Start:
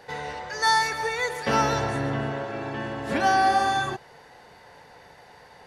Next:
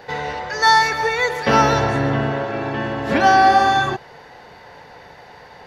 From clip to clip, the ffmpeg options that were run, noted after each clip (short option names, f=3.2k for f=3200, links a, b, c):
-af "equalizer=f=9.3k:w=1.5:g=-13.5,volume=8dB"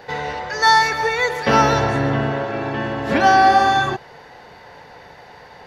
-af anull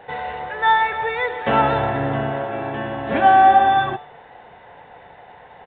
-af "aresample=8000,aresample=44100,equalizer=f=730:t=o:w=0.58:g=6,bandreject=f=146.6:t=h:w=4,bandreject=f=293.2:t=h:w=4,bandreject=f=439.8:t=h:w=4,bandreject=f=586.4:t=h:w=4,bandreject=f=733:t=h:w=4,bandreject=f=879.6:t=h:w=4,bandreject=f=1.0262k:t=h:w=4,bandreject=f=1.1728k:t=h:w=4,bandreject=f=1.3194k:t=h:w=4,bandreject=f=1.466k:t=h:w=4,bandreject=f=1.6126k:t=h:w=4,bandreject=f=1.7592k:t=h:w=4,bandreject=f=1.9058k:t=h:w=4,bandreject=f=2.0524k:t=h:w=4,bandreject=f=2.199k:t=h:w=4,bandreject=f=2.3456k:t=h:w=4,bandreject=f=2.4922k:t=h:w=4,bandreject=f=2.6388k:t=h:w=4,bandreject=f=2.7854k:t=h:w=4,bandreject=f=2.932k:t=h:w=4,bandreject=f=3.0786k:t=h:w=4,bandreject=f=3.2252k:t=h:w=4,bandreject=f=3.3718k:t=h:w=4,bandreject=f=3.5184k:t=h:w=4,bandreject=f=3.665k:t=h:w=4,bandreject=f=3.8116k:t=h:w=4,bandreject=f=3.9582k:t=h:w=4,bandreject=f=4.1048k:t=h:w=4,bandreject=f=4.2514k:t=h:w=4,volume=-4dB"